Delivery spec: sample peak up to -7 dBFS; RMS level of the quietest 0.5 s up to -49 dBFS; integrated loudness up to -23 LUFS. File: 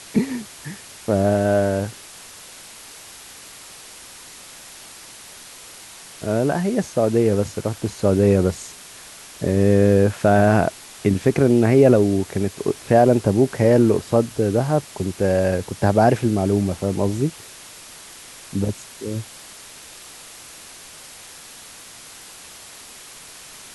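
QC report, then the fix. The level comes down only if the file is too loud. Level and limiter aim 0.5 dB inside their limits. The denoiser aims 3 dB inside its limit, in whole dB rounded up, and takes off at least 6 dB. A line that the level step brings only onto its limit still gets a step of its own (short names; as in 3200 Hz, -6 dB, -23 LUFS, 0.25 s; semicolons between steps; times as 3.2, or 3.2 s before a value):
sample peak -3.0 dBFS: fail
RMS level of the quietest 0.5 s -41 dBFS: fail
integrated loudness -19.5 LUFS: fail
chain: denoiser 7 dB, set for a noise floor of -41 dBFS; gain -4 dB; limiter -7.5 dBFS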